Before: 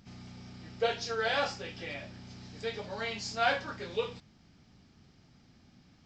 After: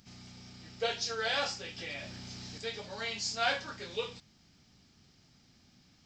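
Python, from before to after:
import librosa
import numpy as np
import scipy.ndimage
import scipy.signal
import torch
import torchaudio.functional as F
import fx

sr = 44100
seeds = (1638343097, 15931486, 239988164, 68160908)

y = fx.high_shelf(x, sr, hz=3100.0, db=12.0)
y = fx.env_flatten(y, sr, amount_pct=50, at=(1.78, 2.58))
y = y * librosa.db_to_amplitude(-4.5)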